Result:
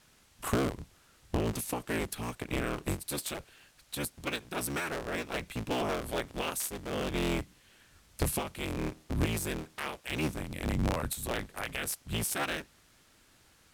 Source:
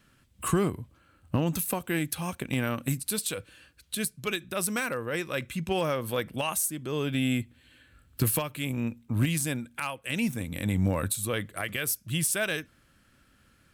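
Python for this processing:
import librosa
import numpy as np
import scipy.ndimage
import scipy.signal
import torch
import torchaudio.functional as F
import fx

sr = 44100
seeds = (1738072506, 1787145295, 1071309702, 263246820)

y = fx.cycle_switch(x, sr, every=3, mode='inverted')
y = fx.quant_dither(y, sr, seeds[0], bits=10, dither='triangular')
y = np.interp(np.arange(len(y)), np.arange(len(y))[::2], y[::2])
y = y * librosa.db_to_amplitude(-4.0)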